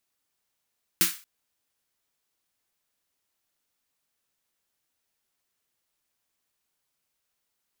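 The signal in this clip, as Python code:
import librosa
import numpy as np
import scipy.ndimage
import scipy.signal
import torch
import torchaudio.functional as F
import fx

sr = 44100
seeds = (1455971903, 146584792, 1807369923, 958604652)

y = fx.drum_snare(sr, seeds[0], length_s=0.23, hz=180.0, second_hz=330.0, noise_db=10.0, noise_from_hz=1300.0, decay_s=0.18, noise_decay_s=0.34)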